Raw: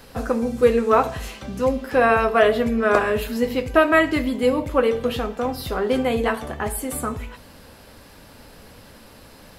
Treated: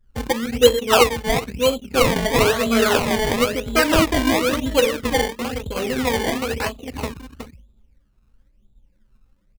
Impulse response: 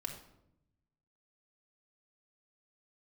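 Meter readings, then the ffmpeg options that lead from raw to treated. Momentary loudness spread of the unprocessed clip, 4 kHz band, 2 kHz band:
11 LU, +11.0 dB, +1.0 dB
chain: -filter_complex "[0:a]afftfilt=real='re*pow(10,11/40*sin(2*PI*(1.2*log(max(b,1)*sr/1024/100)/log(2)-(2.2)*(pts-256)/sr)))':imag='im*pow(10,11/40*sin(2*PI*(1.2*log(max(b,1)*sr/1024/100)/log(2)-(2.2)*(pts-256)/sr)))':win_size=1024:overlap=0.75,adynamicsmooth=sensitivity=4.5:basefreq=2000,bandreject=frequency=700:width=12,asplit=2[link_01][link_02];[link_02]adelay=367,lowpass=frequency=4500:poles=1,volume=-4dB,asplit=2[link_03][link_04];[link_04]adelay=367,lowpass=frequency=4500:poles=1,volume=0.18,asplit=2[link_05][link_06];[link_06]adelay=367,lowpass=frequency=4500:poles=1,volume=0.18[link_07];[link_03][link_05][link_07]amix=inputs=3:normalize=0[link_08];[link_01][link_08]amix=inputs=2:normalize=0,anlmdn=631,highshelf=frequency=4100:gain=-9,acrusher=samples=23:mix=1:aa=0.000001:lfo=1:lforange=23:lforate=1,adynamicequalizer=threshold=0.0224:dfrequency=2600:dqfactor=1.1:tfrequency=2600:tqfactor=1.1:attack=5:release=100:ratio=0.375:range=2:mode=boostabove:tftype=bell,volume=-1.5dB"

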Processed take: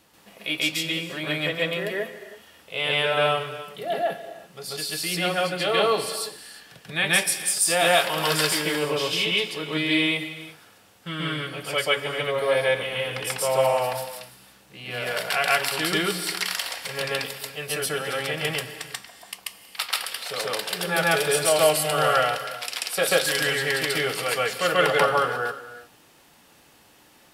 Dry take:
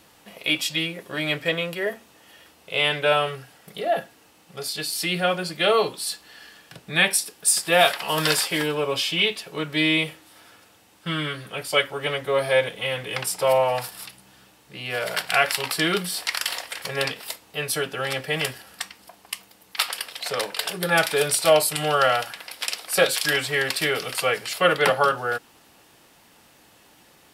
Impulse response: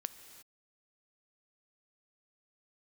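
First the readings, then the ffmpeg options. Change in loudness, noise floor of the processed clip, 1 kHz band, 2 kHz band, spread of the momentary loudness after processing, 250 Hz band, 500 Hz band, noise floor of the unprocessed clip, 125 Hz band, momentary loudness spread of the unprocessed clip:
−0.5 dB, −55 dBFS, −0.5 dB, −0.5 dB, 15 LU, −0.5 dB, −0.5 dB, −55 dBFS, −0.5 dB, 13 LU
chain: -filter_complex "[0:a]asplit=2[link_01][link_02];[1:a]atrim=start_sample=2205,adelay=137[link_03];[link_02][link_03]afir=irnorm=-1:irlink=0,volume=5dB[link_04];[link_01][link_04]amix=inputs=2:normalize=0,volume=-5.5dB"

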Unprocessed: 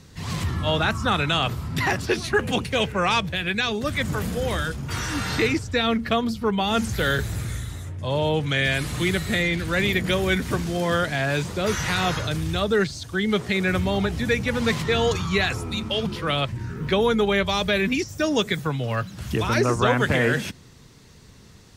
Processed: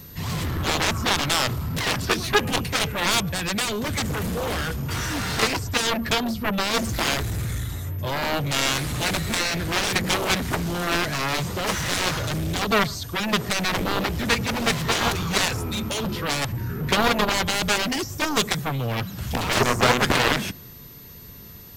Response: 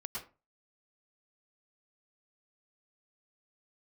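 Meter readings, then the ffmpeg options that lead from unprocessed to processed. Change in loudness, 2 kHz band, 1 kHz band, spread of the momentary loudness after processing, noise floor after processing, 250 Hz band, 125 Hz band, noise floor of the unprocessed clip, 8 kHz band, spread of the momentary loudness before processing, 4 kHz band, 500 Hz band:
0.0 dB, 0.0 dB, +1.5 dB, 7 LU, −42 dBFS, −2.0 dB, −1.5 dB, −48 dBFS, +7.5 dB, 6 LU, +2.5 dB, −3.5 dB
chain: -filter_complex "[0:a]aeval=exprs='val(0)+0.00447*sin(2*PI*13000*n/s)':channel_layout=same,aeval=exprs='0.422*(cos(1*acos(clip(val(0)/0.422,-1,1)))-cos(1*PI/2))+0.15*(cos(7*acos(clip(val(0)/0.422,-1,1)))-cos(7*PI/2))':channel_layout=same,asplit=2[link_01][link_02];[1:a]atrim=start_sample=2205,lowpass=1200[link_03];[link_02][link_03]afir=irnorm=-1:irlink=0,volume=-19dB[link_04];[link_01][link_04]amix=inputs=2:normalize=0"

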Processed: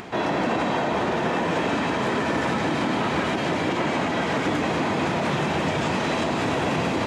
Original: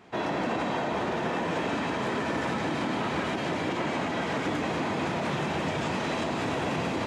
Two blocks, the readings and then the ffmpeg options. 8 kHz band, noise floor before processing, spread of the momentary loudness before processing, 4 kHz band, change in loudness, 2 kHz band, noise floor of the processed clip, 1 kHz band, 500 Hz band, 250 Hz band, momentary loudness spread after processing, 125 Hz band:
+5.5 dB, −31 dBFS, 0 LU, +5.5 dB, +5.5 dB, +5.5 dB, −26 dBFS, +5.5 dB, +5.5 dB, +5.5 dB, 0 LU, +5.5 dB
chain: -af "acompressor=mode=upward:threshold=-35dB:ratio=2.5,volume=5.5dB"

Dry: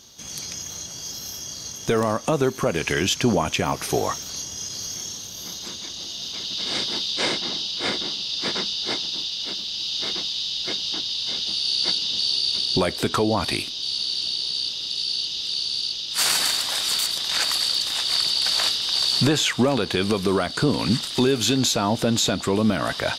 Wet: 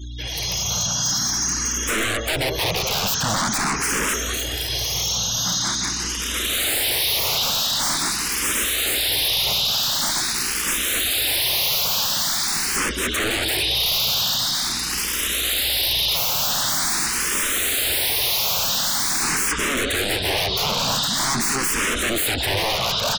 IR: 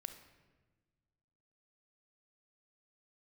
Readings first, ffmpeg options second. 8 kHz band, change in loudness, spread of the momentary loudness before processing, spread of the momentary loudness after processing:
+8.0 dB, +3.0 dB, 11 LU, 4 LU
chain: -filter_complex "[0:a]bandreject=frequency=4600:width=11,aeval=exprs='val(0)+0.00794*(sin(2*PI*60*n/s)+sin(2*PI*2*60*n/s)/2+sin(2*PI*3*60*n/s)/3+sin(2*PI*4*60*n/s)/4+sin(2*PI*5*60*n/s)/5)':channel_layout=same,equalizer=frequency=1600:width_type=o:width=1.6:gain=8.5,alimiter=limit=-10.5dB:level=0:latency=1:release=252,highshelf=frequency=11000:gain=2.5,aecho=1:1:199|398|597|796|995:0.106|0.0593|0.0332|0.0186|0.0104,aeval=exprs='(mod(12.6*val(0)+1,2)-1)/12.6':channel_layout=same,acontrast=32,asoftclip=type=hard:threshold=-27.5dB,dynaudnorm=framelen=180:gausssize=5:maxgain=3dB,afftfilt=real='re*gte(hypot(re,im),0.0158)':imag='im*gte(hypot(re,im),0.0158)':win_size=1024:overlap=0.75,asplit=2[link_01][link_02];[link_02]afreqshift=0.45[link_03];[link_01][link_03]amix=inputs=2:normalize=1,volume=7dB"

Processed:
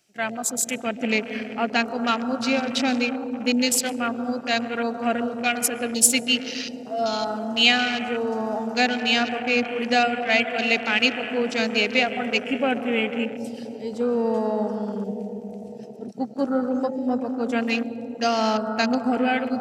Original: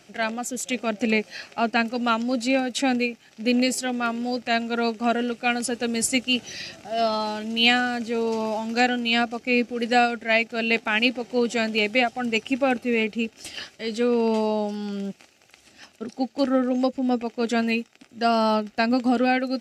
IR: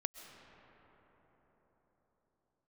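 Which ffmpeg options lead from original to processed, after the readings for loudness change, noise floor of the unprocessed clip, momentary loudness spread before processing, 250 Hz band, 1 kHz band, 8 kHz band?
+0.5 dB, −56 dBFS, 9 LU, −0.5 dB, −0.5 dB, +7.5 dB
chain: -filter_complex "[1:a]atrim=start_sample=2205[link_01];[0:a][link_01]afir=irnorm=-1:irlink=0,crystalizer=i=2.5:c=0,afwtdn=0.0316"

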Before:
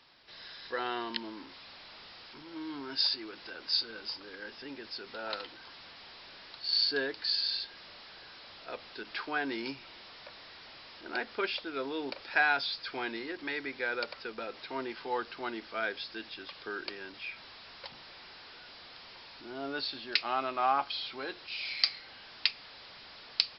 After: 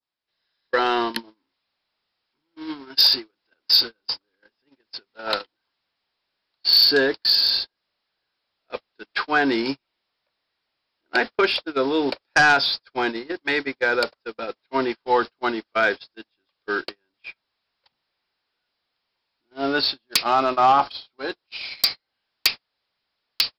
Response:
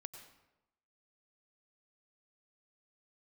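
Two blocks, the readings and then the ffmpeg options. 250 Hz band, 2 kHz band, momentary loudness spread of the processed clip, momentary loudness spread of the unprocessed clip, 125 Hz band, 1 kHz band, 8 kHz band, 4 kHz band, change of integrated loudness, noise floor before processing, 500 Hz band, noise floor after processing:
+13.0 dB, +11.0 dB, 19 LU, 19 LU, +14.0 dB, +12.5 dB, can't be measured, +11.5 dB, +13.0 dB, −51 dBFS, +13.5 dB, −80 dBFS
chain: -af "aeval=exprs='0.668*sin(PI/2*6.31*val(0)/0.668)':channel_layout=same,adynamicequalizer=threshold=0.0355:dfrequency=2400:dqfactor=0.92:tfrequency=2400:tqfactor=0.92:attack=5:release=100:ratio=0.375:range=3.5:mode=cutabove:tftype=bell,agate=range=-43dB:threshold=-18dB:ratio=16:detection=peak,volume=-4.5dB"

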